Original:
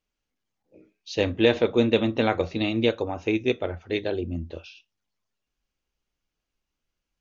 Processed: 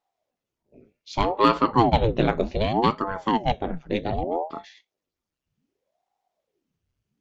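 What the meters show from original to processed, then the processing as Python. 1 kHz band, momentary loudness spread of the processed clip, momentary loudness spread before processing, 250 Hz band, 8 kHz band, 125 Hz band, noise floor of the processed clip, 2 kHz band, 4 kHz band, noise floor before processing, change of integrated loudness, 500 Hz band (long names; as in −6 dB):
+12.5 dB, 10 LU, 12 LU, −0.5 dB, can't be measured, +3.5 dB, below −85 dBFS, −3.0 dB, −1.5 dB, −85 dBFS, +1.5 dB, −1.5 dB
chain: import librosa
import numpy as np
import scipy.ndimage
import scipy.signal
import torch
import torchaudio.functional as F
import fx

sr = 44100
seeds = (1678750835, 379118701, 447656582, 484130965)

y = fx.low_shelf(x, sr, hz=360.0, db=9.0)
y = fx.cheby_harmonics(y, sr, harmonics=(8,), levels_db=(-34,), full_scale_db=-1.5)
y = fx.ring_lfo(y, sr, carrier_hz=420.0, swing_pct=85, hz=0.65)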